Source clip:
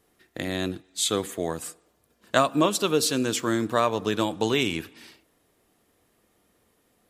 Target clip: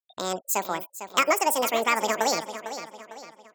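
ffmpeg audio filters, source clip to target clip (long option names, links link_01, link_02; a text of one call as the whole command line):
ffmpeg -i in.wav -filter_complex "[0:a]afftfilt=real='re*gte(hypot(re,im),0.00631)':imag='im*gte(hypot(re,im),0.00631)':win_size=1024:overlap=0.75,acrossover=split=2000[link_01][link_02];[link_01]acompressor=mode=upward:threshold=-42dB:ratio=2.5[link_03];[link_03][link_02]amix=inputs=2:normalize=0,asplit=2[link_04][link_05];[link_05]adelay=904,lowpass=frequency=5000:poles=1,volume=-11dB,asplit=2[link_06][link_07];[link_07]adelay=904,lowpass=frequency=5000:poles=1,volume=0.43,asplit=2[link_08][link_09];[link_09]adelay=904,lowpass=frequency=5000:poles=1,volume=0.43,asplit=2[link_10][link_11];[link_11]adelay=904,lowpass=frequency=5000:poles=1,volume=0.43[link_12];[link_04][link_06][link_08][link_10][link_12]amix=inputs=5:normalize=0,asetrate=88200,aresample=44100" out.wav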